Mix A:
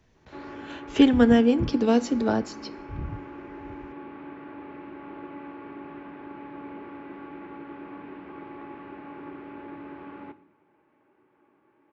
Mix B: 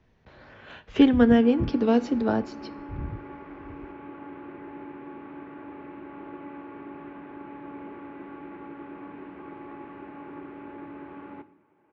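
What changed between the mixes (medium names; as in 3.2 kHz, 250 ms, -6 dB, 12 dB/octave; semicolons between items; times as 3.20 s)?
background: entry +1.10 s; master: add distance through air 160 m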